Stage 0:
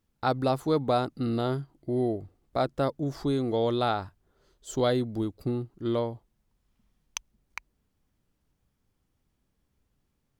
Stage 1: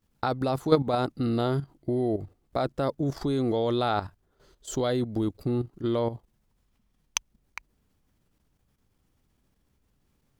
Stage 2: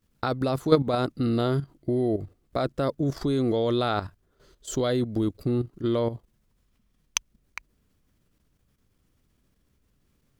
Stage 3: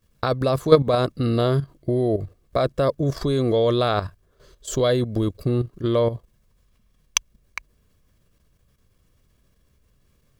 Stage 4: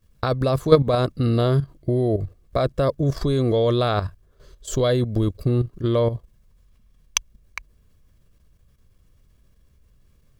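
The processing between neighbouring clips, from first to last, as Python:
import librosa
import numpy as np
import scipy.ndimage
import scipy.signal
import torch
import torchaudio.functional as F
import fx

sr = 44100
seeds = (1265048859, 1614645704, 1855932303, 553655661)

y1 = fx.level_steps(x, sr, step_db=11)
y1 = y1 * 10.0 ** (7.5 / 20.0)
y2 = fx.peak_eq(y1, sr, hz=830.0, db=-6.5, octaves=0.39)
y2 = y2 * 10.0 ** (2.0 / 20.0)
y3 = y2 + 0.4 * np.pad(y2, (int(1.8 * sr / 1000.0), 0))[:len(y2)]
y3 = y3 * 10.0 ** (4.5 / 20.0)
y4 = fx.low_shelf(y3, sr, hz=110.0, db=8.5)
y4 = y4 * 10.0 ** (-1.0 / 20.0)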